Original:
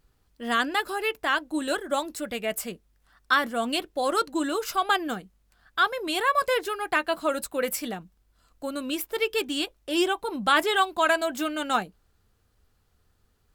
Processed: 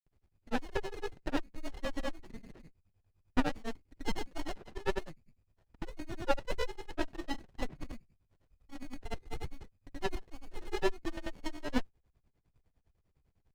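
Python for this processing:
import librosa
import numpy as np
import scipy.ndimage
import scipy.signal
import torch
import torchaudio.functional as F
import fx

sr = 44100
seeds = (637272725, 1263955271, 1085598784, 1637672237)

y = fx.granulator(x, sr, seeds[0], grain_ms=100.0, per_s=9.9, spray_ms=100.0, spread_st=0)
y = fx.freq_invert(y, sr, carrier_hz=2500)
y = fx.running_max(y, sr, window=33)
y = F.gain(torch.from_numpy(y), -1.5).numpy()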